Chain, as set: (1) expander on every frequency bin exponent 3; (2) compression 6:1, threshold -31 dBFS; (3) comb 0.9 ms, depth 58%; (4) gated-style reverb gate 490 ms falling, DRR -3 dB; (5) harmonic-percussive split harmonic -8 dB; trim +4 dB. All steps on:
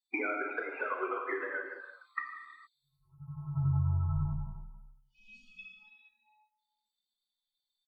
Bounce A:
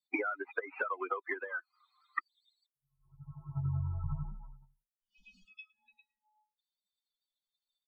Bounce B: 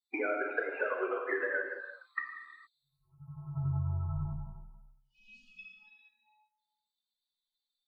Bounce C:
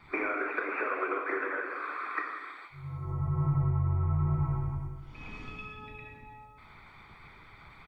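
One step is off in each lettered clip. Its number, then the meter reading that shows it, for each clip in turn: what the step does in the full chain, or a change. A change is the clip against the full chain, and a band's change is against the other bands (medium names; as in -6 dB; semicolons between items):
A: 4, momentary loudness spread change -1 LU; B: 3, 500 Hz band +6.0 dB; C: 1, 500 Hz band -1.5 dB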